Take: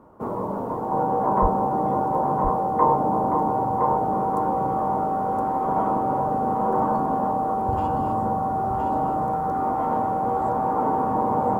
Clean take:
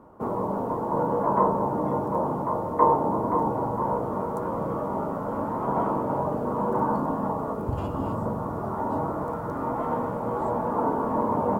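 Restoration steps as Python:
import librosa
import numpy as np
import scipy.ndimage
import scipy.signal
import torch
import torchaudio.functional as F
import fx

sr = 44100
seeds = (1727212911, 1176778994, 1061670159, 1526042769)

y = fx.notch(x, sr, hz=770.0, q=30.0)
y = fx.highpass(y, sr, hz=140.0, slope=24, at=(1.41, 1.53), fade=0.02)
y = fx.fix_echo_inverse(y, sr, delay_ms=1017, level_db=-5.0)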